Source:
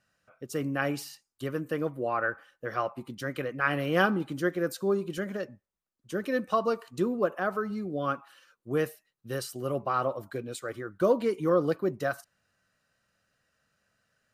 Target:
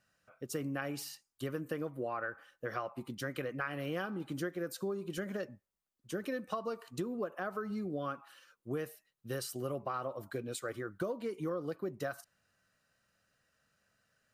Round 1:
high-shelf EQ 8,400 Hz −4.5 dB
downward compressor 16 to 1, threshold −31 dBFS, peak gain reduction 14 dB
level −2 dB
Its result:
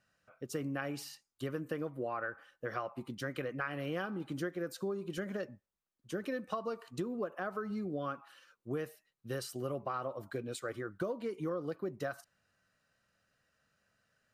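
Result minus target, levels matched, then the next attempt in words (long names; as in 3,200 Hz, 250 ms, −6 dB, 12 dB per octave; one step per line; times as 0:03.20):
8,000 Hz band −3.0 dB
high-shelf EQ 8,400 Hz +3 dB
downward compressor 16 to 1, threshold −31 dBFS, peak gain reduction 14 dB
level −2 dB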